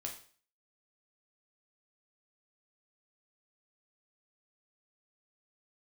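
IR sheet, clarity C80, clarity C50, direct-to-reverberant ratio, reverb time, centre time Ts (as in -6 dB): 12.5 dB, 8.5 dB, 0.5 dB, 0.45 s, 20 ms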